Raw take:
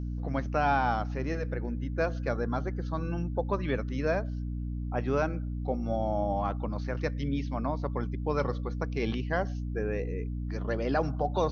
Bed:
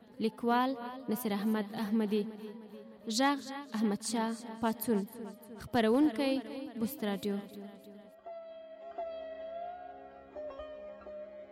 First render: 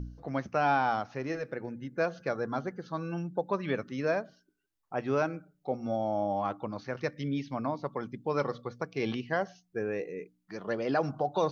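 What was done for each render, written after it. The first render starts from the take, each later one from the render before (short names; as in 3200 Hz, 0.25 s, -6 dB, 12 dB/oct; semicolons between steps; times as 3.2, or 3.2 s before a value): de-hum 60 Hz, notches 5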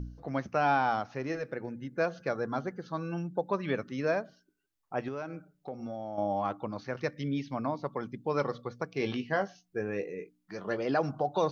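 5.08–6.18 compressor 4:1, threshold -35 dBFS; 8.97–10.85 doubler 20 ms -8.5 dB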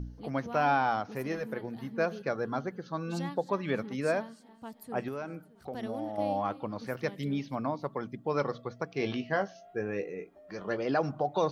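add bed -12.5 dB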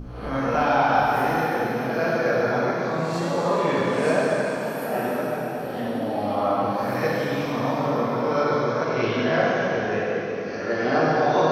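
spectral swells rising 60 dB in 0.69 s; plate-style reverb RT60 4.2 s, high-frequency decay 1×, DRR -7.5 dB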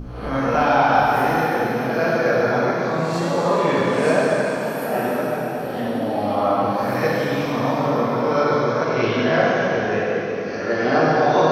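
gain +3.5 dB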